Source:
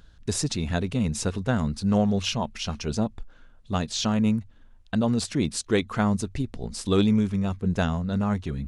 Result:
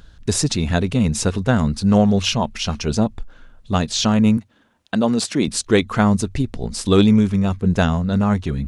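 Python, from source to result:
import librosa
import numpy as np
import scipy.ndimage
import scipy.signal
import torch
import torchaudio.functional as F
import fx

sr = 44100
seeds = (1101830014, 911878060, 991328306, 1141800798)

y = fx.highpass(x, sr, hz=200.0, slope=12, at=(4.37, 5.48))
y = y * 10.0 ** (7.5 / 20.0)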